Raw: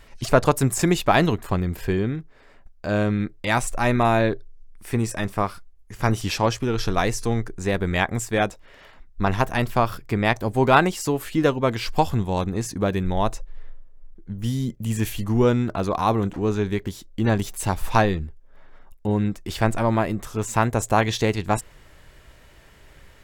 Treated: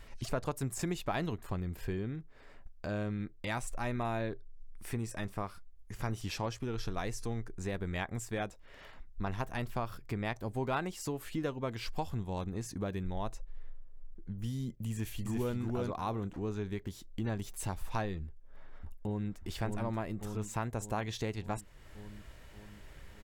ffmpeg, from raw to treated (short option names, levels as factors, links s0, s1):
-filter_complex "[0:a]asplit=2[s0][s1];[s1]afade=t=in:st=14.91:d=0.01,afade=t=out:st=15.56:d=0.01,aecho=0:1:340|680:0.794328|0.0794328[s2];[s0][s2]amix=inputs=2:normalize=0,asplit=2[s3][s4];[s4]afade=t=in:st=18.25:d=0.01,afade=t=out:st=19.39:d=0.01,aecho=0:1:580|1160|1740|2320|2900|3480|4060:0.630957|0.347027|0.190865|0.104976|0.0577365|0.0317551|0.0174653[s5];[s3][s5]amix=inputs=2:normalize=0,lowshelf=f=140:g=4,acompressor=threshold=0.0158:ratio=2,volume=0.562"